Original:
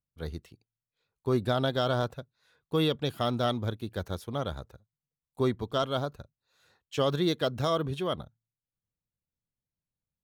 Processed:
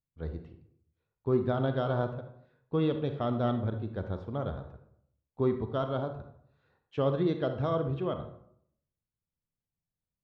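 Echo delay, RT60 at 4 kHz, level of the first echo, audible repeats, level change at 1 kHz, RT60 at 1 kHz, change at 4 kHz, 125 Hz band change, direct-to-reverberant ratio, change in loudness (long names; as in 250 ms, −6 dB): no echo audible, 0.40 s, no echo audible, no echo audible, −3.5 dB, 0.70 s, −13.5 dB, +0.5 dB, 7.0 dB, −1.0 dB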